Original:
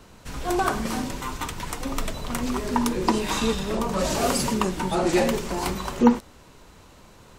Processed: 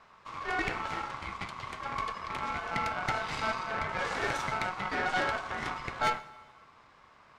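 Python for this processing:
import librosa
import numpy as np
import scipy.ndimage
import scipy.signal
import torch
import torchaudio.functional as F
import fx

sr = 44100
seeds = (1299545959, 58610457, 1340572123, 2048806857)

y = scipy.signal.sosfilt(scipy.signal.butter(2, 3700.0, 'lowpass', fs=sr, output='sos'), x)
y = y * np.sin(2.0 * np.pi * 1100.0 * np.arange(len(y)) / sr)
y = fx.tube_stage(y, sr, drive_db=22.0, bias=0.8)
y = fx.rev_fdn(y, sr, rt60_s=1.5, lf_ratio=1.05, hf_ratio=0.95, size_ms=71.0, drr_db=14.5)
y = y * librosa.db_to_amplitude(-1.0)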